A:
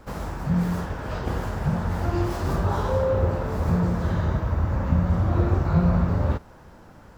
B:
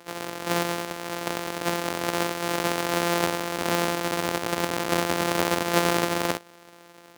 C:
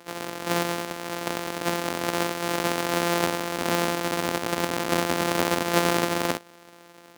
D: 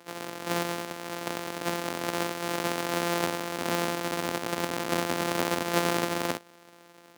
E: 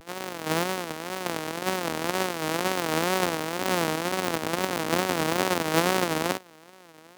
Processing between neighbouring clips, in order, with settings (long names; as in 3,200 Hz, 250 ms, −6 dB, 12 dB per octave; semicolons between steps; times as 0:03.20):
samples sorted by size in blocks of 256 samples; high-pass filter 350 Hz 12 dB per octave; level +2 dB
parametric band 250 Hz +4 dB 0.3 octaves
high-pass filter 71 Hz; level −4 dB
tape wow and flutter 150 cents; level +3 dB